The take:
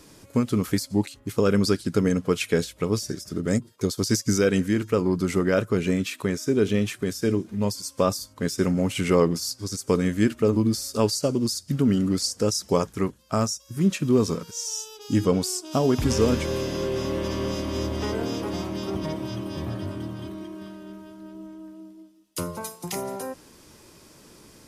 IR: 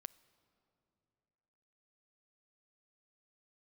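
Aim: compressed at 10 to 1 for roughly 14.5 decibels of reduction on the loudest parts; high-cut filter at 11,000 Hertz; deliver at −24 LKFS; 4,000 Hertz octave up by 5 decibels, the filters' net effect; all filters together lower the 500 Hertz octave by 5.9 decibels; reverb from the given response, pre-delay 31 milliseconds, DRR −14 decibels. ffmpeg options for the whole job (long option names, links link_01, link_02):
-filter_complex "[0:a]lowpass=11000,equalizer=frequency=500:width_type=o:gain=-7.5,equalizer=frequency=4000:width_type=o:gain=7,acompressor=threshold=-33dB:ratio=10,asplit=2[link_01][link_02];[1:a]atrim=start_sample=2205,adelay=31[link_03];[link_02][link_03]afir=irnorm=-1:irlink=0,volume=20dB[link_04];[link_01][link_04]amix=inputs=2:normalize=0,volume=-1dB"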